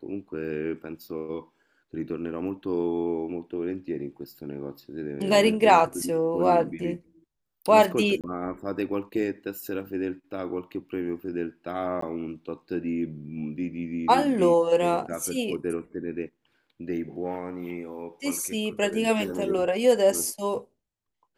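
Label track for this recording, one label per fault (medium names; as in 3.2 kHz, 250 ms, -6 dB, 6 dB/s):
8.210000	8.240000	dropout 27 ms
12.010000	12.020000	dropout 14 ms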